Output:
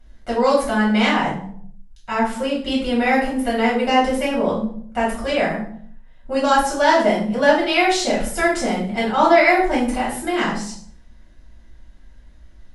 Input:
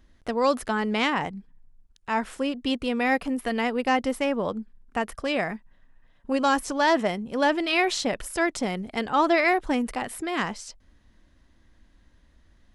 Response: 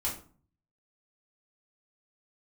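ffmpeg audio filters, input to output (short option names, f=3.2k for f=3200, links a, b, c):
-filter_complex "[1:a]atrim=start_sample=2205,afade=t=out:st=0.39:d=0.01,atrim=end_sample=17640,asetrate=29988,aresample=44100[a];[0:a][a]afir=irnorm=-1:irlink=0,volume=-1dB"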